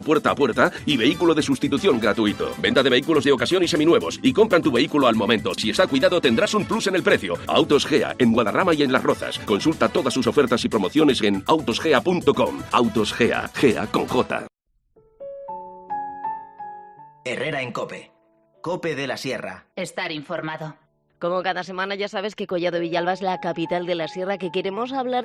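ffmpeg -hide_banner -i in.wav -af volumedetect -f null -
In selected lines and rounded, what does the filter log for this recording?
mean_volume: -21.4 dB
max_volume: -3.7 dB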